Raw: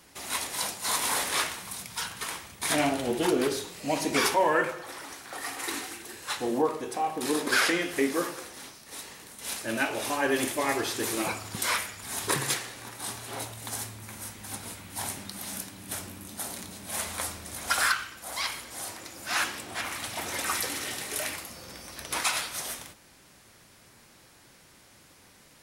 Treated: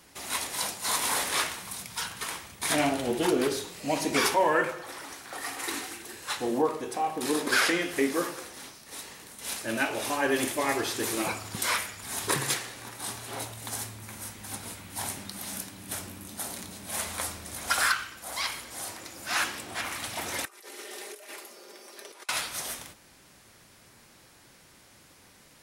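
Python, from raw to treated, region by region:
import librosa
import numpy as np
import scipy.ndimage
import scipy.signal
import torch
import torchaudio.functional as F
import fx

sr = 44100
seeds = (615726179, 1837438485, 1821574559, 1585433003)

y = fx.chain(x, sr, fx.comb(ms=5.0, depth=0.48),
    fx.over_compress(threshold_db=-35.0, ratio=-0.5),
    fx.ladder_highpass(hz=330.0, resonance_pct=55), at=(20.45, 22.29))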